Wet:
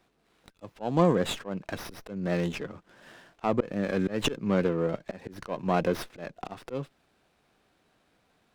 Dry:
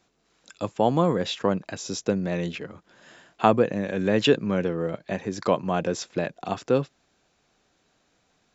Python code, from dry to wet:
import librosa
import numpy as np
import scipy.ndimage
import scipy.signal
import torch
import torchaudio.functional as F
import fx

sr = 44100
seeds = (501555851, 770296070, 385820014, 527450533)

y = fx.auto_swell(x, sr, attack_ms=233.0)
y = fx.running_max(y, sr, window=5)